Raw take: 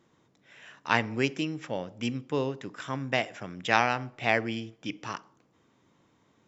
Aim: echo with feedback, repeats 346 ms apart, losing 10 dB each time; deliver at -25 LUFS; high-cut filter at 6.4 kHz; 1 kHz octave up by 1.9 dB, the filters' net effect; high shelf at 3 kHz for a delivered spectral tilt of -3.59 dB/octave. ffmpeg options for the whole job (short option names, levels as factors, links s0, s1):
-af "lowpass=6400,equalizer=f=1000:t=o:g=3,highshelf=f=3000:g=-4,aecho=1:1:346|692|1038|1384:0.316|0.101|0.0324|0.0104,volume=1.68"